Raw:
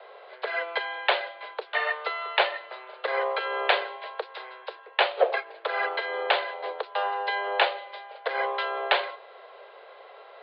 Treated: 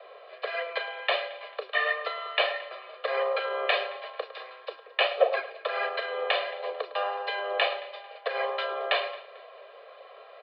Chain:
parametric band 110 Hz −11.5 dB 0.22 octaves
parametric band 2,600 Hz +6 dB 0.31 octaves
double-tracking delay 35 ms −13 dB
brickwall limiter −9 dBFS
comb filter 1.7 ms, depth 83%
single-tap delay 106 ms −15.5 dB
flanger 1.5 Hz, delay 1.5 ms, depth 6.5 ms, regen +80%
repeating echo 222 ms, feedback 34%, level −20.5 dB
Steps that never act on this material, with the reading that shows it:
parametric band 110 Hz: nothing at its input below 320 Hz

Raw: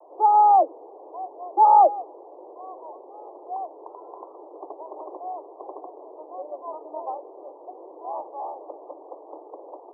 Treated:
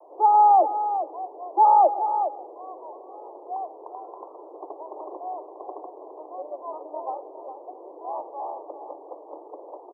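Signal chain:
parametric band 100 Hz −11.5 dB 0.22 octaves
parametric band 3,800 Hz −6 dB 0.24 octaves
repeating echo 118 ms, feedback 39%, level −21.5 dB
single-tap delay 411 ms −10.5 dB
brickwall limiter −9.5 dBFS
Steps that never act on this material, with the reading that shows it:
parametric band 100 Hz: nothing at its input below 270 Hz
parametric band 3,800 Hz: nothing at its input above 1,300 Hz

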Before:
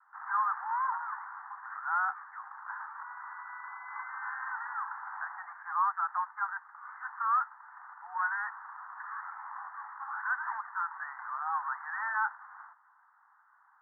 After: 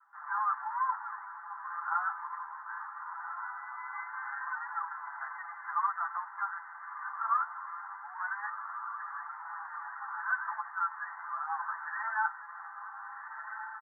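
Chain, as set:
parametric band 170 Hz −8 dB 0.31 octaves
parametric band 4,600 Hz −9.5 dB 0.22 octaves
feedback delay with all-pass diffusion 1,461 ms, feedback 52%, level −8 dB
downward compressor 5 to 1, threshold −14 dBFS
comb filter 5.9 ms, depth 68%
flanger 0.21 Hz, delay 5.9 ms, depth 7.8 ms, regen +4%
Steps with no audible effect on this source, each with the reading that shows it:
parametric band 170 Hz: nothing at its input below 680 Hz
parametric band 4,600 Hz: nothing at its input above 2,000 Hz
downward compressor, threshold −14 dBFS: peak of its input −17.5 dBFS

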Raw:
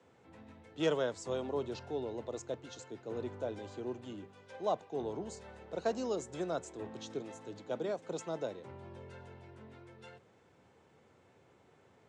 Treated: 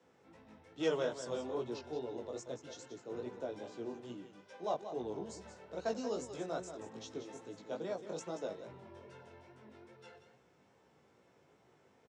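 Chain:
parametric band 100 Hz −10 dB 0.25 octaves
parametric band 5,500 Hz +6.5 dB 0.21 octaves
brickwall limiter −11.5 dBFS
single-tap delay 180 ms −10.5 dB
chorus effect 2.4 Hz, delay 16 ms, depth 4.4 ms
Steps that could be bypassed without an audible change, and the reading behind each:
brickwall limiter −11.5 dBFS: peak of its input −19.0 dBFS

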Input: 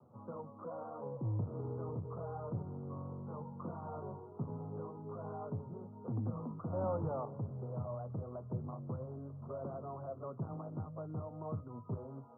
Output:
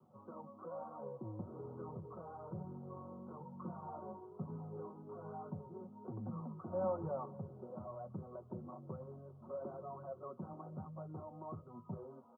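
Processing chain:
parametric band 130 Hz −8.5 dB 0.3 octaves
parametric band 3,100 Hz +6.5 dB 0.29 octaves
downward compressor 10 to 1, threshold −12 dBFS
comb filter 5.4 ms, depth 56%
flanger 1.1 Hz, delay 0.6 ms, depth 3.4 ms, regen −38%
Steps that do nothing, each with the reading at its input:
parametric band 3,100 Hz: nothing at its input above 1,400 Hz
downward compressor, threshold −12 dBFS: peak of its input −25.5 dBFS

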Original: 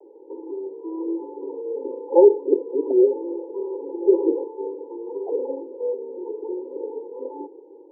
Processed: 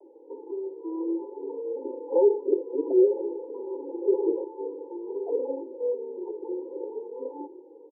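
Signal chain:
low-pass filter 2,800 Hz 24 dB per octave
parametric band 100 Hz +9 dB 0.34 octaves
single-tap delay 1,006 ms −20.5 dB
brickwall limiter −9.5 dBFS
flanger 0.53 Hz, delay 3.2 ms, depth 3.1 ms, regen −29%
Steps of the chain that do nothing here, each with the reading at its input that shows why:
low-pass filter 2,800 Hz: nothing at its input above 910 Hz
parametric band 100 Hz: nothing at its input below 250 Hz

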